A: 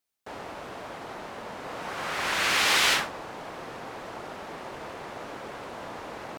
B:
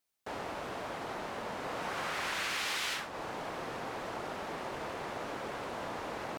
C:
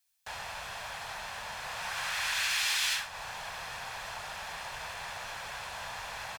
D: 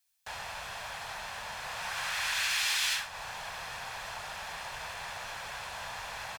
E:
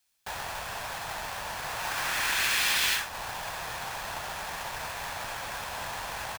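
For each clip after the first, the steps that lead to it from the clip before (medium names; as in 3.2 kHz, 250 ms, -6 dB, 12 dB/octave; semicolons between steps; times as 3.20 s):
compression 6:1, threshold -33 dBFS, peak gain reduction 13.5 dB
amplifier tone stack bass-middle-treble 10-0-10; comb 1.2 ms, depth 31%; trim +8 dB
no audible change
square wave that keeps the level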